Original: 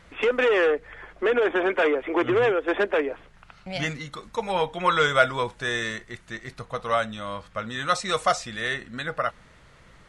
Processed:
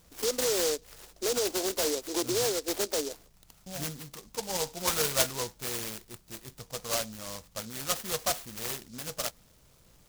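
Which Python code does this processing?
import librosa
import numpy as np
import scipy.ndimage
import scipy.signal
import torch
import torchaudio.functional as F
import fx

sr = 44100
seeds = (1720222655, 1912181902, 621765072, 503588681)

y = fx.noise_mod_delay(x, sr, seeds[0], noise_hz=5400.0, depth_ms=0.19)
y = y * librosa.db_to_amplitude(-7.5)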